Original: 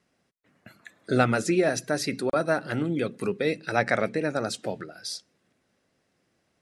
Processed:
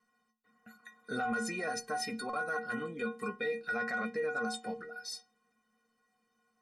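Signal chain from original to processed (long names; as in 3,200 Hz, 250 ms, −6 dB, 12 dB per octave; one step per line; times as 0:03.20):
parametric band 1,200 Hz +11 dB 0.79 octaves
stiff-string resonator 220 Hz, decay 0.4 s, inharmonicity 0.03
in parallel at −10 dB: soft clipping −31.5 dBFS, distortion −12 dB
on the sum: brickwall limiter −31.5 dBFS, peak gain reduction 11.5 dB
level +5 dB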